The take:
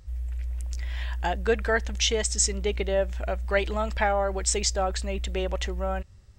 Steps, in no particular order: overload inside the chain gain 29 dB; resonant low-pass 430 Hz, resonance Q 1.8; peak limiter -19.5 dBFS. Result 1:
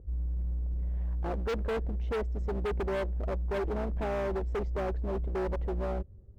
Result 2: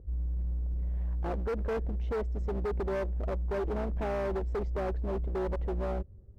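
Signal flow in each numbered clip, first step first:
resonant low-pass > overload inside the chain > peak limiter; resonant low-pass > peak limiter > overload inside the chain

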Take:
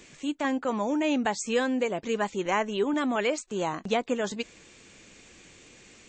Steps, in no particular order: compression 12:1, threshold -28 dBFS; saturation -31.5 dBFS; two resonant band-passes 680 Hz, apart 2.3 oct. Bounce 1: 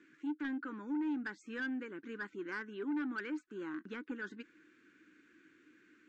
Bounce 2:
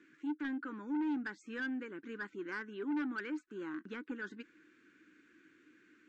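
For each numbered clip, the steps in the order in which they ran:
two resonant band-passes > compression > saturation; two resonant band-passes > saturation > compression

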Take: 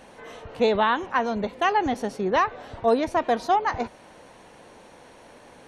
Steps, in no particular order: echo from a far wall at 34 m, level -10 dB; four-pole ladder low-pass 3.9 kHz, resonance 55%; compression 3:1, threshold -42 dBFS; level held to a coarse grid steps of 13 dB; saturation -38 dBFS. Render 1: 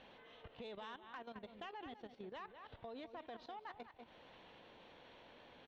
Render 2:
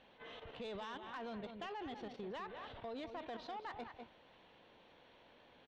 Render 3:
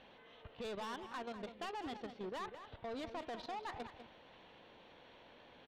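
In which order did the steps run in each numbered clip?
echo from a far wall > level held to a coarse grid > compression > four-pole ladder low-pass > saturation; four-pole ladder low-pass > level held to a coarse grid > echo from a far wall > compression > saturation; level held to a coarse grid > four-pole ladder low-pass > saturation > compression > echo from a far wall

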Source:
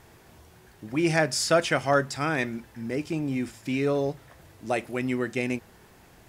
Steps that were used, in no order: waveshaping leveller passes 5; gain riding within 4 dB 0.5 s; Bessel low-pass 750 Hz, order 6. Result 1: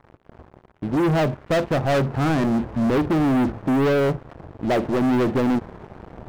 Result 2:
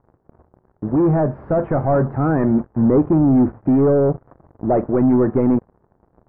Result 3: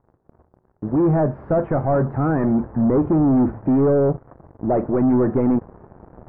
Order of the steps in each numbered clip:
gain riding > Bessel low-pass > waveshaping leveller; waveshaping leveller > gain riding > Bessel low-pass; gain riding > waveshaping leveller > Bessel low-pass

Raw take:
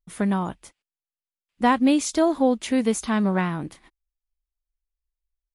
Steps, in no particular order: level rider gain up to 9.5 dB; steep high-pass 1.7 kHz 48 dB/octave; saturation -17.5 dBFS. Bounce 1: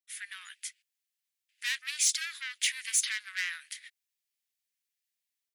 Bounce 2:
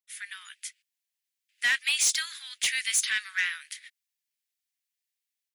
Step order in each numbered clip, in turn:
level rider > saturation > steep high-pass; steep high-pass > level rider > saturation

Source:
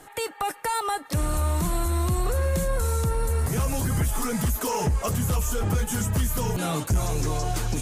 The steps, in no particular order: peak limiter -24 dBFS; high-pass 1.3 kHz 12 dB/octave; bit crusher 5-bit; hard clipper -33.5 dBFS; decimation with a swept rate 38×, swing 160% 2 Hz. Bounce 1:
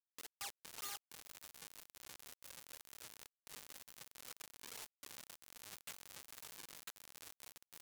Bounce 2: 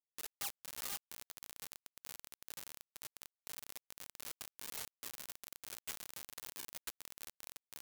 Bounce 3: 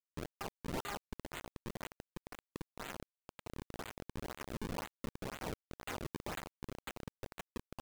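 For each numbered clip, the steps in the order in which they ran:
peak limiter > decimation with a swept rate > high-pass > bit crusher > hard clipper; decimation with a swept rate > peak limiter > hard clipper > high-pass > bit crusher; high-pass > decimation with a swept rate > peak limiter > bit crusher > hard clipper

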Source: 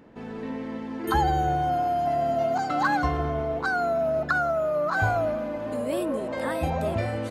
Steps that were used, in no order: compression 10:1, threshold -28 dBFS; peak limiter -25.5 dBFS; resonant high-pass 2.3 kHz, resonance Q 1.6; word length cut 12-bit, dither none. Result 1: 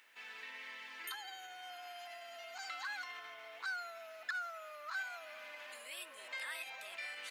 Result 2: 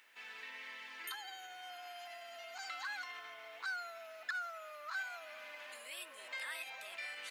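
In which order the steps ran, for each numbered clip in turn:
compression > word length cut > peak limiter > resonant high-pass; compression > peak limiter > word length cut > resonant high-pass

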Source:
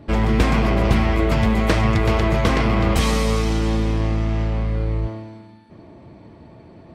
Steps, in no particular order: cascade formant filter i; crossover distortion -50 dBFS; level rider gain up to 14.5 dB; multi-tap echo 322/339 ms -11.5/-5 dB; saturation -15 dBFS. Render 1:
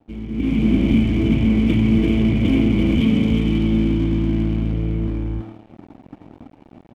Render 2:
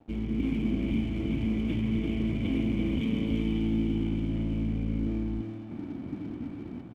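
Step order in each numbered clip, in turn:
multi-tap echo > saturation > cascade formant filter > crossover distortion > level rider; level rider > saturation > cascade formant filter > crossover distortion > multi-tap echo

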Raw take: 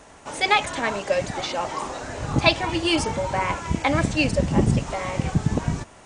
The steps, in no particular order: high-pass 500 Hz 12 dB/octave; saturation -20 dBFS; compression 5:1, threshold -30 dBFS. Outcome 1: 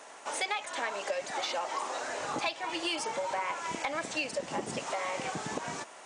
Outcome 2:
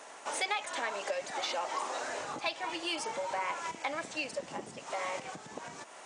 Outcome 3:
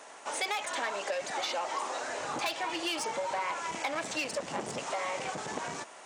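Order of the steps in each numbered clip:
high-pass > compression > saturation; compression > saturation > high-pass; saturation > high-pass > compression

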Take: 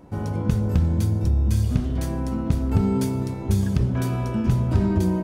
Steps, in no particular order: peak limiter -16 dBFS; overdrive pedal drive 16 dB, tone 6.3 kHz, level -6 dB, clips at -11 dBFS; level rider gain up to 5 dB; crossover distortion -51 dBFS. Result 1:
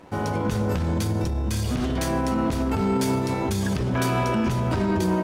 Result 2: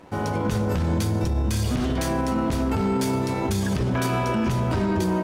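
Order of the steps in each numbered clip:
level rider > peak limiter > overdrive pedal > crossover distortion; overdrive pedal > crossover distortion > level rider > peak limiter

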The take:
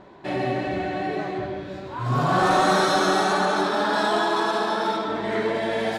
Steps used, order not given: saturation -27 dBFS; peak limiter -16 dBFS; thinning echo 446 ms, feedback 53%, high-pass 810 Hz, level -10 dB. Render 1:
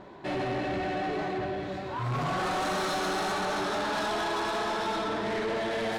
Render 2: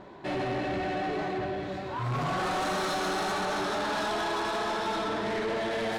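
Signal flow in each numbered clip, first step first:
peak limiter > thinning echo > saturation; thinning echo > peak limiter > saturation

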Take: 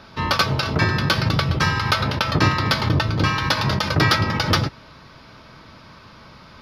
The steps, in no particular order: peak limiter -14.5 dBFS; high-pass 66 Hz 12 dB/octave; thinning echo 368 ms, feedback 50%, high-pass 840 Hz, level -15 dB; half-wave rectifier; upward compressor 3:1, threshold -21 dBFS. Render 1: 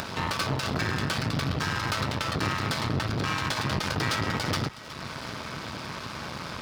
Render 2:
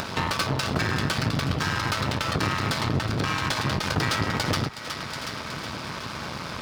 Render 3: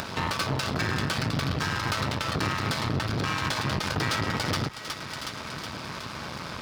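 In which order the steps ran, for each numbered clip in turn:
upward compressor > peak limiter > thinning echo > half-wave rectifier > high-pass; half-wave rectifier > high-pass > peak limiter > thinning echo > upward compressor; thinning echo > upward compressor > half-wave rectifier > peak limiter > high-pass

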